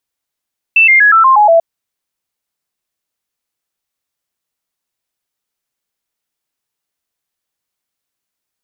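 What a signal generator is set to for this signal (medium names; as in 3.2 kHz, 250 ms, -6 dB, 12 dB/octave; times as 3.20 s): stepped sine 2.66 kHz down, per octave 3, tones 7, 0.12 s, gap 0.00 s -4 dBFS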